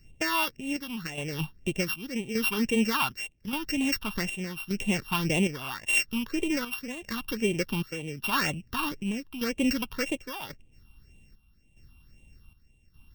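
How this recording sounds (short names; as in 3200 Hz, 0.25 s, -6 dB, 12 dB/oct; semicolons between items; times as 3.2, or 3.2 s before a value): a buzz of ramps at a fixed pitch in blocks of 16 samples; phasing stages 6, 1.9 Hz, lowest notch 500–1400 Hz; chopped level 0.85 Hz, depth 60%, duty 65%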